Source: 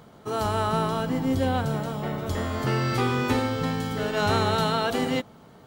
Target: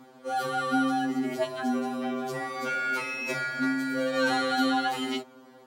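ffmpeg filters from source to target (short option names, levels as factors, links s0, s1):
-af "afreqshift=100,afftfilt=real='re*2.45*eq(mod(b,6),0)':imag='im*2.45*eq(mod(b,6),0)':win_size=2048:overlap=0.75"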